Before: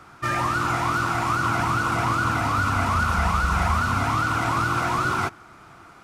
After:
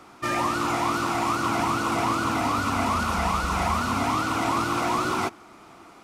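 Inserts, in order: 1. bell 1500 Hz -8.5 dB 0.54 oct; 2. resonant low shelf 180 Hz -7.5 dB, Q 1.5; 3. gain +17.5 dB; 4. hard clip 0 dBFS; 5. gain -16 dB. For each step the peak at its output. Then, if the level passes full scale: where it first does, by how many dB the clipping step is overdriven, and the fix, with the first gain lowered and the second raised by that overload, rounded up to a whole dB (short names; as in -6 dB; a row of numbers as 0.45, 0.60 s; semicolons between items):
-12.0, -13.5, +4.0, 0.0, -16.0 dBFS; step 3, 4.0 dB; step 3 +13.5 dB, step 5 -12 dB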